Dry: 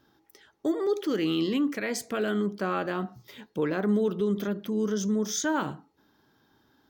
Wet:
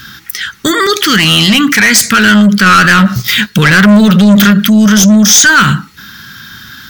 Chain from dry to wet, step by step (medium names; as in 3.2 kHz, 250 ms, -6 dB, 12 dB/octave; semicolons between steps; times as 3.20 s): FFT filter 210 Hz 0 dB, 300 Hz -16 dB, 770 Hz -21 dB, 1.4 kHz +7 dB; 2.66–4.51 s: waveshaping leveller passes 1; saturation -28.5 dBFS, distortion -10 dB; loudness maximiser +34 dB; trim -1 dB